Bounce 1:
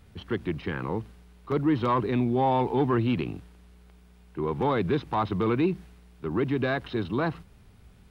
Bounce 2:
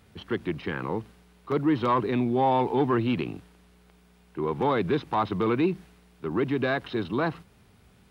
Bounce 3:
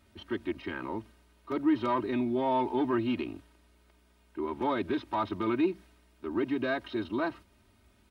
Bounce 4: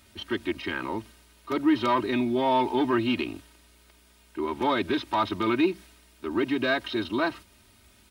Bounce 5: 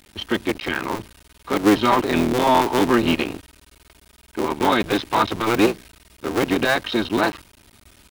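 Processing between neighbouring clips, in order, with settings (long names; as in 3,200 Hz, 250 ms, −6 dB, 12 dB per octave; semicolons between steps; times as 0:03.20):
high-pass filter 160 Hz 6 dB per octave; level +1.5 dB
comb filter 3.2 ms, depth 94%; level −7.5 dB
high-shelf EQ 2,200 Hz +11 dB; level +3.5 dB
sub-harmonics by changed cycles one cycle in 3, muted; level +8 dB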